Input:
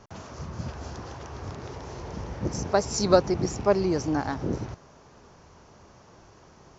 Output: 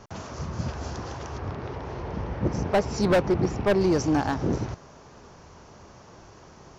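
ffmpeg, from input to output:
ffmpeg -i in.wav -filter_complex "[0:a]asettb=1/sr,asplit=3[link_01][link_02][link_03];[link_01]atrim=end=1.384[link_04];[link_02]atrim=start=1.38:end=3.81,asetpts=PTS-STARTPTS,afade=type=in:duration=0.004:curve=qsin,afade=type=out:start_time=2.426:duration=0.004:curve=qsin,lowpass=3100[link_05];[link_03]atrim=start=3.806[link_06];[link_04][link_05]acrossfade=duration=0.004:curve1=hsin:curve2=qsin[link_07];[link_07][link_06]acrossfade=duration=0.004:curve1=qsin:curve2=hsin,asoftclip=type=hard:threshold=-20.5dB,volume=4dB" out.wav

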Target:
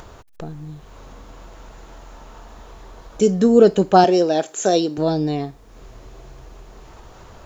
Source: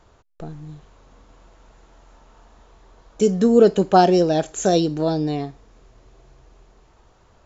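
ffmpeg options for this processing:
ffmpeg -i in.wav -filter_complex "[0:a]acompressor=mode=upward:threshold=-32dB:ratio=2.5,acrusher=bits=10:mix=0:aa=0.000001,asettb=1/sr,asplit=3[link_01][link_02][link_03];[link_01]atrim=end=4.044[link_04];[link_02]atrim=start=4.04:end=4.98,asetpts=PTS-STARTPTS,afade=type=in:duration=0.004:curve=qsin,afade=type=out:start_time=0.936:duration=0.004:curve=qsin,highpass=270[link_05];[link_03]atrim=start=4.976[link_06];[link_04][link_05]acrossfade=duration=0.004:curve1=hsin:curve2=qsin[link_07];[link_07][link_06]acrossfade=duration=0.004:curve1=qsin:curve2=hsin,volume=1.5dB" out.wav

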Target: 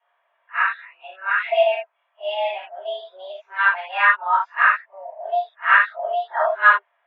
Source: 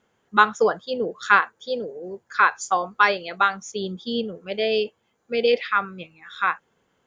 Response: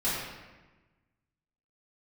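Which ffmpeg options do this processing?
-filter_complex "[0:a]areverse[link_01];[1:a]atrim=start_sample=2205,atrim=end_sample=4410[link_02];[link_01][link_02]afir=irnorm=-1:irlink=0,highpass=frequency=460:width_type=q:width=0.5412,highpass=frequency=460:width_type=q:width=1.307,lowpass=frequency=2800:width_type=q:width=0.5176,lowpass=frequency=2800:width_type=q:width=0.7071,lowpass=frequency=2800:width_type=q:width=1.932,afreqshift=190,volume=-5.5dB"

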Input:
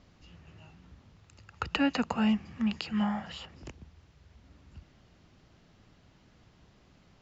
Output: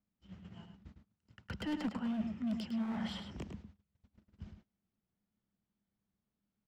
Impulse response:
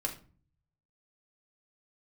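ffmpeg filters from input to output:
-filter_complex "[0:a]lowpass=frequency=3900:poles=1,agate=range=-31dB:threshold=-52dB:ratio=16:detection=peak,equalizer=frequency=190:width_type=o:width=0.33:gain=13.5,areverse,acompressor=threshold=-31dB:ratio=20,areverse,asoftclip=type=hard:threshold=-32dB,asetrate=47628,aresample=44100,acrossover=split=450[link_01][link_02];[link_02]asoftclip=type=tanh:threshold=-37.5dB[link_03];[link_01][link_03]amix=inputs=2:normalize=0,asplit=2[link_04][link_05];[link_05]adelay=105,volume=-7dB,highshelf=frequency=4000:gain=-2.36[link_06];[link_04][link_06]amix=inputs=2:normalize=0"

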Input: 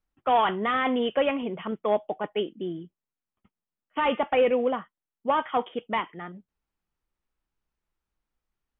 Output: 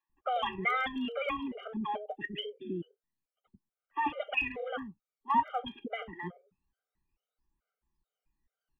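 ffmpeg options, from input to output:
ffmpeg -i in.wav -filter_complex "[0:a]highshelf=frequency=2100:gain=-11.5,acrossover=split=130|1200[link_01][link_02][link_03];[link_02]acompressor=threshold=-37dB:ratio=5[link_04];[link_03]aphaser=in_gain=1:out_gain=1:delay=1.3:decay=0.78:speed=0.26:type=triangular[link_05];[link_01][link_04][link_05]amix=inputs=3:normalize=0,asettb=1/sr,asplit=3[link_06][link_07][link_08];[link_06]atrim=end=2.154[link_09];[link_07]atrim=start=2.15:end=2.82,asetpts=PTS-STARTPTS,afade=type=in:duration=0.004:curve=qsin,afade=type=out:start_time=0.666:duration=0.004:curve=qsin,asuperstop=centerf=920:order=8:qfactor=1[link_10];[link_08]atrim=start=2.816[link_11];[link_09][link_10]acrossfade=duration=0.004:curve1=hsin:curve2=qsin[link_12];[link_12][link_11]acrossfade=duration=0.004:curve1=qsin:curve2=hsin,acrossover=split=460[link_13][link_14];[link_13]adelay=90[link_15];[link_15][link_14]amix=inputs=2:normalize=0,afftfilt=real='re*gt(sin(2*PI*2.3*pts/sr)*(1-2*mod(floor(b*sr/1024/400),2)),0)':imag='im*gt(sin(2*PI*2.3*pts/sr)*(1-2*mod(floor(b*sr/1024/400),2)),0)':win_size=1024:overlap=0.75,volume=4.5dB" out.wav

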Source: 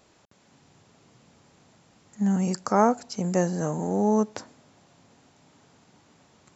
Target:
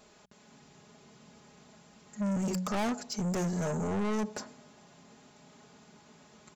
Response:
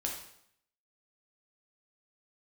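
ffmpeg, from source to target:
-af "aecho=1:1:4.8:0.64,bandreject=frequency=61.36:width_type=h:width=4,bandreject=frequency=122.72:width_type=h:width=4,bandreject=frequency=184.08:width_type=h:width=4,asoftclip=type=tanh:threshold=-28.5dB"

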